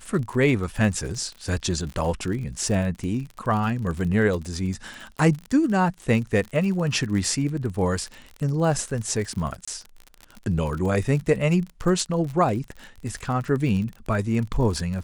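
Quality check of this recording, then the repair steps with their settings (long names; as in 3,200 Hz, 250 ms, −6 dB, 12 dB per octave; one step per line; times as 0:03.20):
surface crackle 44 per second −30 dBFS
0:09.65–0:09.68: drop-out 25 ms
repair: click removal
repair the gap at 0:09.65, 25 ms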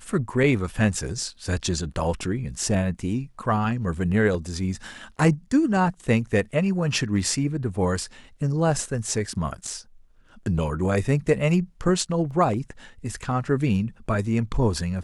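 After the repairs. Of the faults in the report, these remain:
none of them is left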